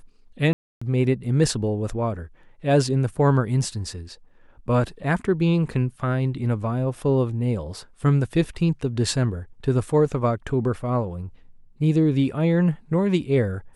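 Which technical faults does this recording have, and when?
0:00.53–0:00.81: drop-out 285 ms

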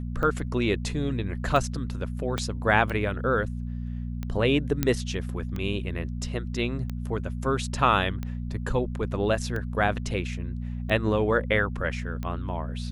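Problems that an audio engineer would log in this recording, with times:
mains hum 60 Hz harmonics 4 −32 dBFS
scratch tick 45 rpm −20 dBFS
0:02.38: click −13 dBFS
0:04.83: click −9 dBFS

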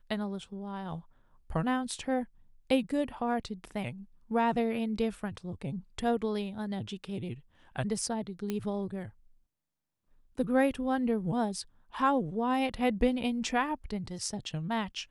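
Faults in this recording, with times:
0:08.50: click −19 dBFS

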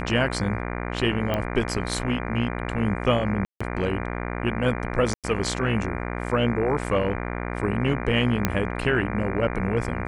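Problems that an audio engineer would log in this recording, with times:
mains buzz 60 Hz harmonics 40 −30 dBFS
0:01.34: click −13 dBFS
0:03.45–0:03.60: drop-out 155 ms
0:05.14–0:05.24: drop-out 97 ms
0:08.45: click −6 dBFS

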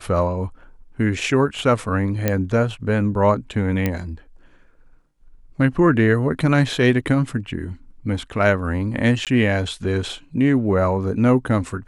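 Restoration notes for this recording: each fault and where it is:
0:02.28: click −5 dBFS
0:03.86: click −8 dBFS
0:09.25–0:09.27: drop-out 17 ms

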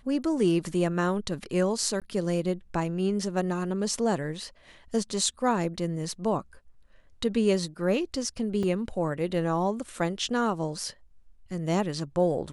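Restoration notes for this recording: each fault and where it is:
0:02.00–0:02.02: drop-out 17 ms
0:08.63: drop-out 4.1 ms

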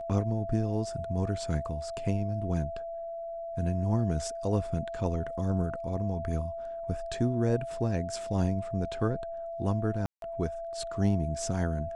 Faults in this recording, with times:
whistle 670 Hz −35 dBFS
0:10.06–0:10.22: drop-out 162 ms

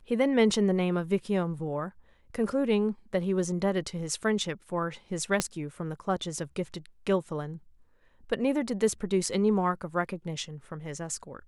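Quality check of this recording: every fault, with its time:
0:05.40: click −10 dBFS

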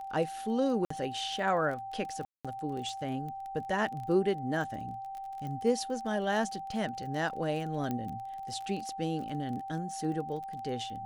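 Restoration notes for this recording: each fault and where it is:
surface crackle 25 per second −38 dBFS
whistle 780 Hz −38 dBFS
0:00.85–0:00.90: drop-out 54 ms
0:02.25–0:02.45: drop-out 196 ms
0:05.47: click −30 dBFS
0:07.91: click −21 dBFS

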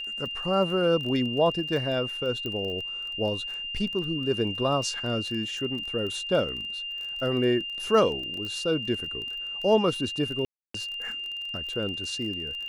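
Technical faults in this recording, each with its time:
surface crackle 24 per second −34 dBFS
whistle 2,800 Hz −32 dBFS
0:02.46: click −20 dBFS
0:08.45: click −24 dBFS
0:10.45–0:10.74: drop-out 294 ms

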